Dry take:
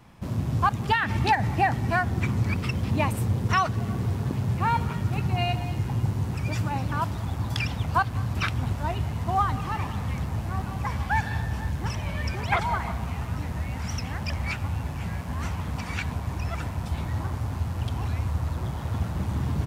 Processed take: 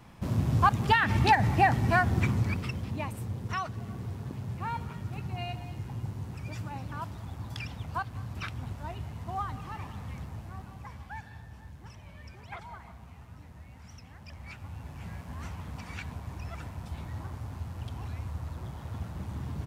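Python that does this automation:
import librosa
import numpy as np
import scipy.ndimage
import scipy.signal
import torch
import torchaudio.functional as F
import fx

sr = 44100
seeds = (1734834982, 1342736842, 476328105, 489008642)

y = fx.gain(x, sr, db=fx.line((2.19, 0.0), (3.0, -10.5), (10.2, -10.5), (11.33, -18.5), (14.15, -18.5), (15.09, -9.5)))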